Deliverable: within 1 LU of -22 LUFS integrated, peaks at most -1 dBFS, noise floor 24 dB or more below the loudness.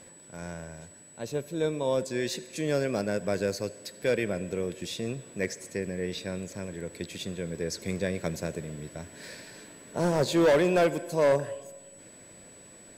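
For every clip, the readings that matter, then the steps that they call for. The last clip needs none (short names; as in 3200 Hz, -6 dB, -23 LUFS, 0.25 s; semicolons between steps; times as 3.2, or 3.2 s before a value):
clipped 0.8%; flat tops at -17.5 dBFS; steady tone 7900 Hz; tone level -51 dBFS; loudness -30.0 LUFS; peak -17.5 dBFS; loudness target -22.0 LUFS
-> clip repair -17.5 dBFS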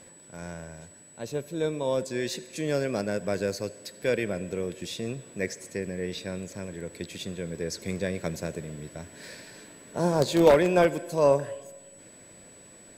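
clipped 0.0%; steady tone 7900 Hz; tone level -51 dBFS
-> notch 7900 Hz, Q 30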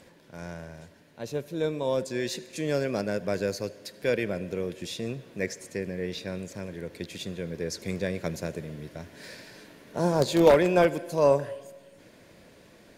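steady tone none; loudness -28.5 LUFS; peak -8.5 dBFS; loudness target -22.0 LUFS
-> gain +6.5 dB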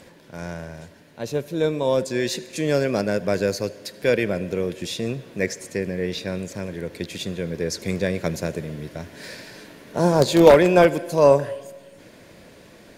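loudness -22.0 LUFS; peak -2.0 dBFS; noise floor -49 dBFS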